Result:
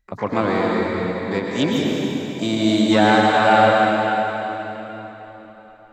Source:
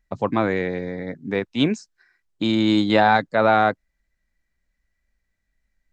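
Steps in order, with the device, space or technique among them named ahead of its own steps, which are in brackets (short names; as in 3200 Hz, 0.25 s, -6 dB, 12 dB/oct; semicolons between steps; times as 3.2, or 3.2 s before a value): shimmer-style reverb (harmoniser +12 st -12 dB; reverb RT60 4.0 s, pre-delay 0.101 s, DRR -2.5 dB); gain -1.5 dB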